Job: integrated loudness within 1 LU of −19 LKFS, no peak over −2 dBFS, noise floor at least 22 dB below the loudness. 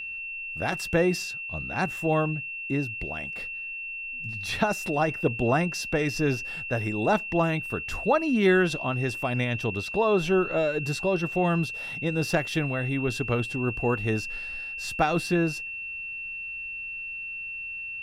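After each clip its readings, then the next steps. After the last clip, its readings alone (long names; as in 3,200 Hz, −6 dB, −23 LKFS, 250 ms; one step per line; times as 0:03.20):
interfering tone 2,700 Hz; level of the tone −33 dBFS; integrated loudness −27.0 LKFS; sample peak −8.5 dBFS; target loudness −19.0 LKFS
→ notch filter 2,700 Hz, Q 30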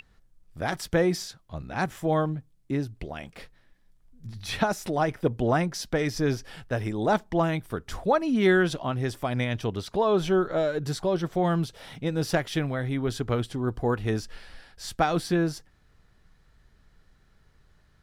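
interfering tone none found; integrated loudness −27.5 LKFS; sample peak −8.5 dBFS; target loudness −19.0 LKFS
→ level +8.5 dB
brickwall limiter −2 dBFS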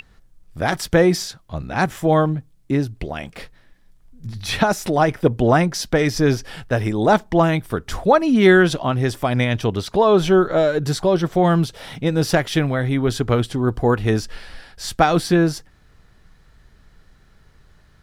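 integrated loudness −19.0 LKFS; sample peak −2.0 dBFS; background noise floor −53 dBFS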